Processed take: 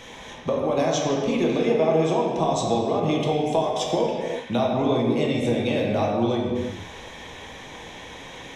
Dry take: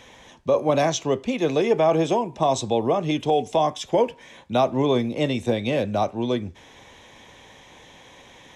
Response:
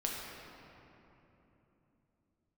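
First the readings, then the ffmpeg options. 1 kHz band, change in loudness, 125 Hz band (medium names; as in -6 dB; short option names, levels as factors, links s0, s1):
-1.5 dB, -0.5 dB, +1.0 dB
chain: -filter_complex "[0:a]acompressor=threshold=0.0398:ratio=6[s0];[1:a]atrim=start_sample=2205,afade=t=out:st=0.45:d=0.01,atrim=end_sample=20286[s1];[s0][s1]afir=irnorm=-1:irlink=0,volume=1.88"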